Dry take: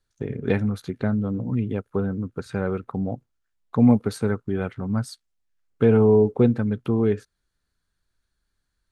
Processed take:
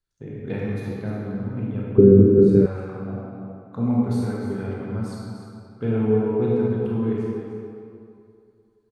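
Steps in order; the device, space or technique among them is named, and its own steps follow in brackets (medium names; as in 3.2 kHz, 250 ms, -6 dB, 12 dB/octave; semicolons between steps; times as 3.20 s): cave (delay 300 ms -11 dB; reverberation RT60 2.5 s, pre-delay 21 ms, DRR -5.5 dB); 1.98–2.66 s: resonant low shelf 560 Hz +13 dB, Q 3; trim -10.5 dB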